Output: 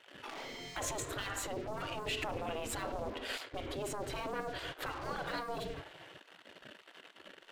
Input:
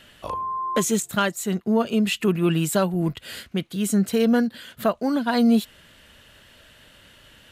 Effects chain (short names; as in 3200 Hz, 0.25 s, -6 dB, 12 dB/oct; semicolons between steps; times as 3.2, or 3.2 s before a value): RIAA curve playback; reverb RT60 0.70 s, pre-delay 5 ms, DRR 7 dB; sample leveller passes 2; limiter -11.5 dBFS, peak gain reduction 11 dB; spectral gate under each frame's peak -20 dB weak; gain -6 dB